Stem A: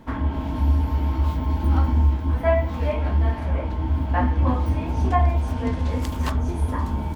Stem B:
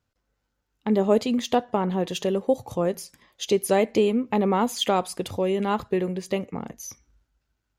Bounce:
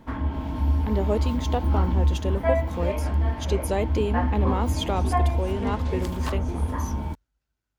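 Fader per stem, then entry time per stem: -3.0 dB, -5.5 dB; 0.00 s, 0.00 s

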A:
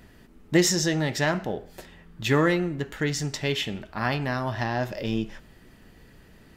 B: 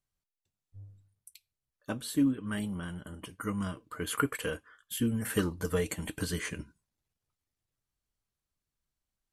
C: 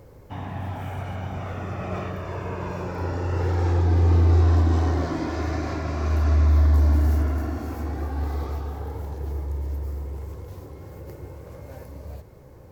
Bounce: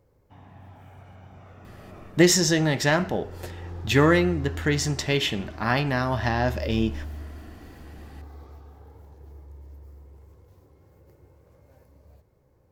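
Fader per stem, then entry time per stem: +3.0 dB, mute, -16.0 dB; 1.65 s, mute, 0.00 s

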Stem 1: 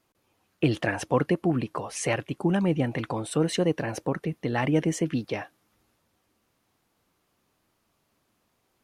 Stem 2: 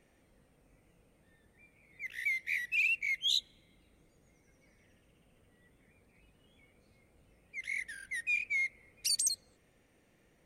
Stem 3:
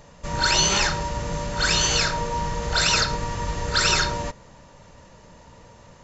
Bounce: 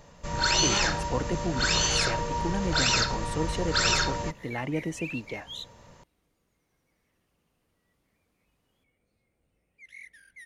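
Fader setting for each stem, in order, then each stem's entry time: -7.0 dB, -9.5 dB, -4.0 dB; 0.00 s, 2.25 s, 0.00 s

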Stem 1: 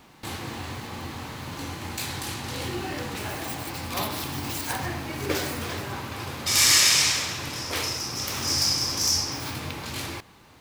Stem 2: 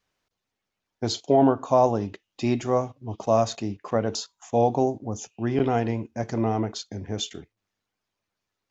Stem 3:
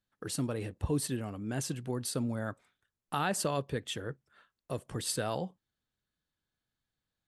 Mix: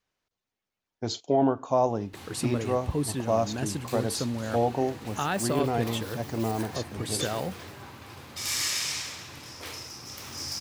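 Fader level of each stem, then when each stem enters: -11.0 dB, -4.5 dB, +2.5 dB; 1.90 s, 0.00 s, 2.05 s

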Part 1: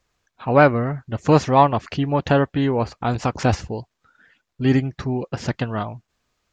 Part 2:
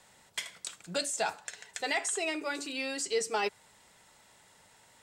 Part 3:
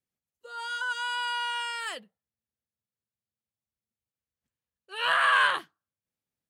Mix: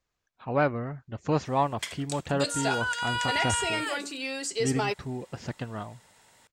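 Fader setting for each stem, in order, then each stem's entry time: -11.0 dB, +1.5 dB, +1.0 dB; 0.00 s, 1.45 s, 2.00 s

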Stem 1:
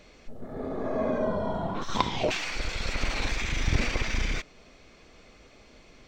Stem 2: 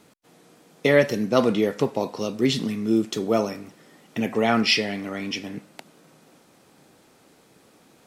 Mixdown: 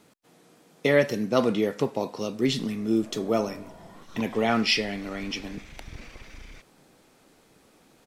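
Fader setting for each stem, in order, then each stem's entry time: -17.0 dB, -3.0 dB; 2.20 s, 0.00 s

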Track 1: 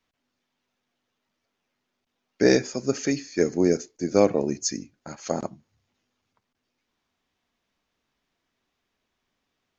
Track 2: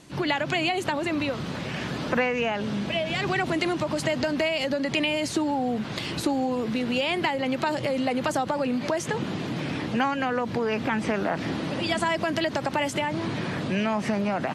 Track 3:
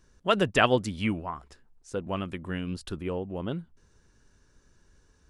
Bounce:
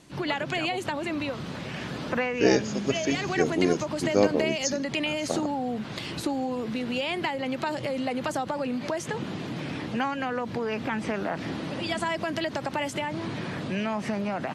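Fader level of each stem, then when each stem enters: -3.0 dB, -3.5 dB, -17.0 dB; 0.00 s, 0.00 s, 0.00 s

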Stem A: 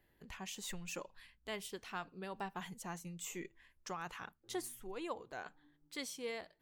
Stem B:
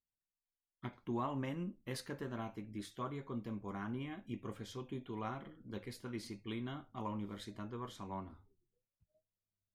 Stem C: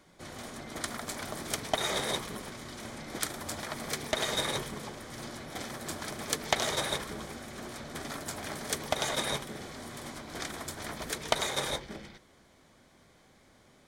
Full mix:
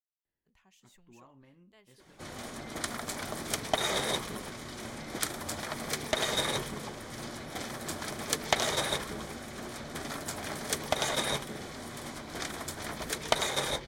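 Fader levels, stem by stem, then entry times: -18.5 dB, -19.0 dB, +1.0 dB; 0.25 s, 0.00 s, 2.00 s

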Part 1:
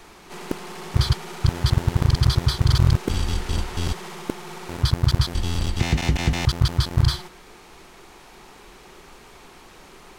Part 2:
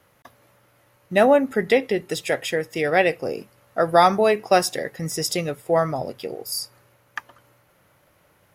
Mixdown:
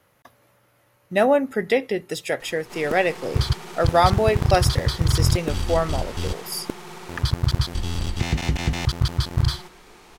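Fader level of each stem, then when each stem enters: -2.0 dB, -2.0 dB; 2.40 s, 0.00 s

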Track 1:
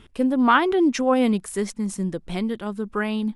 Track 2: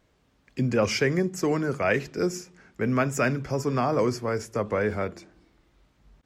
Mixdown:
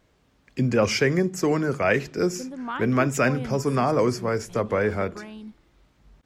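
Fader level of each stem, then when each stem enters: -15.0 dB, +2.5 dB; 2.20 s, 0.00 s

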